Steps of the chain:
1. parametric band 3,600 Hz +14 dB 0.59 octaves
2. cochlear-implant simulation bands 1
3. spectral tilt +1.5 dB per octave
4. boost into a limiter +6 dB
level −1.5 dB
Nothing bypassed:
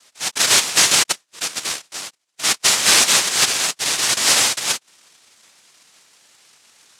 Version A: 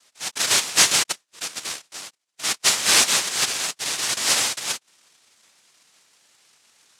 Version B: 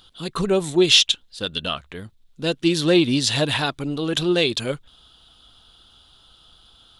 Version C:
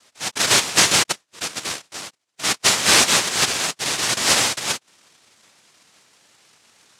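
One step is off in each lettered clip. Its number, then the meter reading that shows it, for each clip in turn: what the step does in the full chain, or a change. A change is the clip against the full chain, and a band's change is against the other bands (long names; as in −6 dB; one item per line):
4, change in crest factor +5.0 dB
2, 250 Hz band +20.0 dB
3, 125 Hz band +5.0 dB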